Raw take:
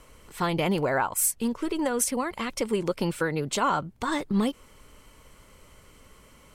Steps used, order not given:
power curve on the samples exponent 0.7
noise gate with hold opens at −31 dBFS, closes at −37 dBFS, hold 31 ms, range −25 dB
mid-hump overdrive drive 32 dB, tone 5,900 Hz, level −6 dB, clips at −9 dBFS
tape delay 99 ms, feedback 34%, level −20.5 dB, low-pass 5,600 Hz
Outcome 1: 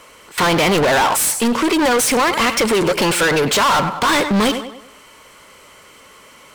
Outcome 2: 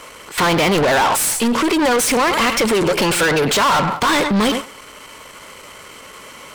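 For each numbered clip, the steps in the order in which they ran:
noise gate with hold, then tape delay, then mid-hump overdrive, then power curve on the samples
tape delay, then noise gate with hold, then power curve on the samples, then mid-hump overdrive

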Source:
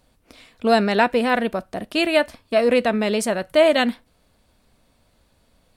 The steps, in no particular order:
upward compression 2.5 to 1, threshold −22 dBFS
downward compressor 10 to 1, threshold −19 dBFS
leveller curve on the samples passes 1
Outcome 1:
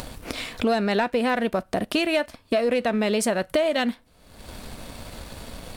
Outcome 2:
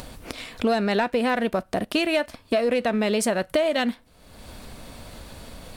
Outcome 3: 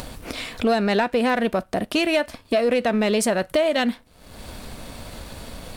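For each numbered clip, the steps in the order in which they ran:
upward compression, then leveller curve on the samples, then downward compressor
leveller curve on the samples, then downward compressor, then upward compression
downward compressor, then upward compression, then leveller curve on the samples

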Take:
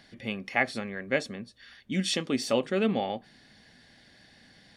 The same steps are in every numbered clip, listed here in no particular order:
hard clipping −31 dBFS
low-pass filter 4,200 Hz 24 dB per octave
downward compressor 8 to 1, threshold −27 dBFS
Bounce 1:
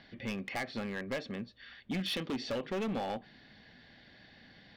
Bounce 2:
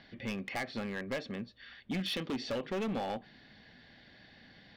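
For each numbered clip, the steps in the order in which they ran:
low-pass filter, then downward compressor, then hard clipping
downward compressor, then low-pass filter, then hard clipping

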